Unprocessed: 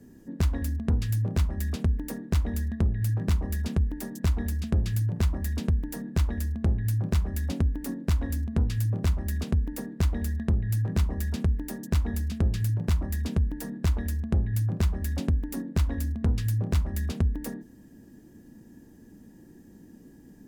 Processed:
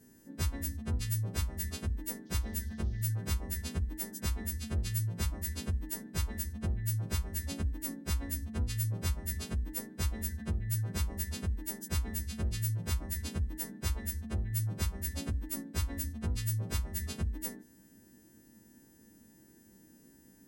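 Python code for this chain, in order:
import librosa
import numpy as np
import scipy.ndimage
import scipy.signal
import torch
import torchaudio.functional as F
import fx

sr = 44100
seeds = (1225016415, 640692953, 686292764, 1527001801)

y = fx.freq_snap(x, sr, grid_st=2)
y = fx.dmg_noise_band(y, sr, seeds[0], low_hz=3100.0, high_hz=6200.0, level_db=-61.0, at=(2.25, 3.01), fade=0.02)
y = F.gain(torch.from_numpy(y), -7.0).numpy()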